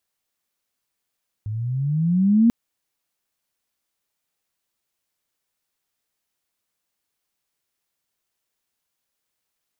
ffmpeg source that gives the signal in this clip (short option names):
-f lavfi -i "aevalsrc='pow(10,(-11+14*(t/1.04-1))/20)*sin(2*PI*103*1.04/(14.5*log(2)/12)*(exp(14.5*log(2)/12*t/1.04)-1))':d=1.04:s=44100"